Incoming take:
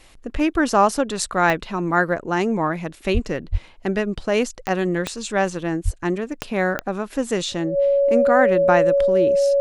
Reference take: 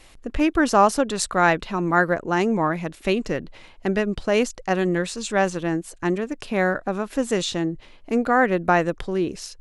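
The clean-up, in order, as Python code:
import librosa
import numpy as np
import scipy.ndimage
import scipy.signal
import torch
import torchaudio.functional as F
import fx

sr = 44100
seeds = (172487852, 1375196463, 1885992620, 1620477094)

y = fx.fix_declick_ar(x, sr, threshold=10.0)
y = fx.notch(y, sr, hz=560.0, q=30.0)
y = fx.highpass(y, sr, hz=140.0, slope=24, at=(3.13, 3.25), fade=0.02)
y = fx.highpass(y, sr, hz=140.0, slope=24, at=(3.51, 3.63), fade=0.02)
y = fx.highpass(y, sr, hz=140.0, slope=24, at=(5.84, 5.96), fade=0.02)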